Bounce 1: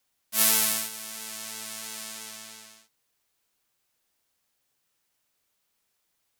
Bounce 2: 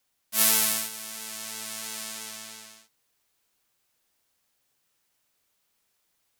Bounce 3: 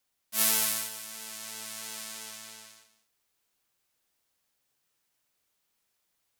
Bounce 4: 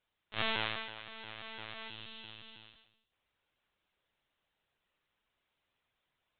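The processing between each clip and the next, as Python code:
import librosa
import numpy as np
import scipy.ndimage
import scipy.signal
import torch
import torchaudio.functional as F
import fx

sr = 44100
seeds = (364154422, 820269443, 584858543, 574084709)

y1 = fx.rider(x, sr, range_db=3, speed_s=2.0)
y1 = y1 * librosa.db_to_amplitude(-1.0)
y2 = y1 + 10.0 ** (-14.0 / 20.0) * np.pad(y1, (int(198 * sr / 1000.0), 0))[:len(y1)]
y2 = y2 * librosa.db_to_amplitude(-4.0)
y3 = fx.spec_box(y2, sr, start_s=1.89, length_s=1.23, low_hz=330.0, high_hz=2600.0, gain_db=-8)
y3 = fx.lpc_vocoder(y3, sr, seeds[0], excitation='pitch_kept', order=16)
y3 = y3 * librosa.db_to_amplitude(1.0)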